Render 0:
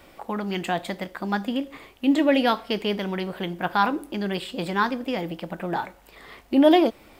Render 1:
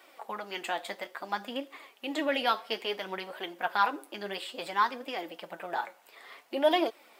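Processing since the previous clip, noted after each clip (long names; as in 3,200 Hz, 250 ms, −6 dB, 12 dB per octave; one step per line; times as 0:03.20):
flanger 0.58 Hz, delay 2.5 ms, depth 7.7 ms, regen +35%
high-pass filter 530 Hz 12 dB per octave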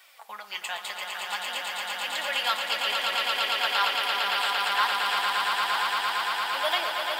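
guitar amp tone stack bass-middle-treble 10-0-10
on a send: echo that builds up and dies away 114 ms, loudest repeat 8, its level −4.5 dB
on the sum: level +7 dB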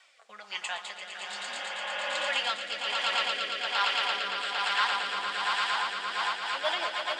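rotating-speaker cabinet horn 1.2 Hz, later 8 Hz, at 0:05.98
healed spectral selection 0:01.32–0:02.22, 350–3,500 Hz both
elliptic band-pass filter 170–7,700 Hz, stop band 50 dB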